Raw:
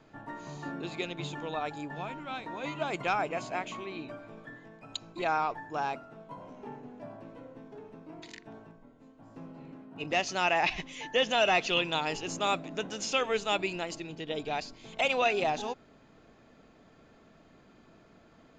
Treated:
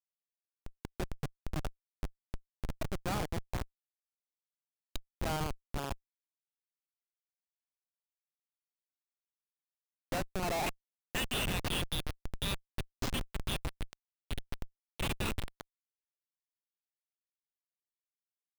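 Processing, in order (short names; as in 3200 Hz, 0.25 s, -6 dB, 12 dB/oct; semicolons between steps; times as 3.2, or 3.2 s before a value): high-pass sweep 120 Hz -> 3600 Hz, 9.89–11.45; de-hum 52.07 Hz, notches 3; Schmitt trigger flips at -26 dBFS; gain +2 dB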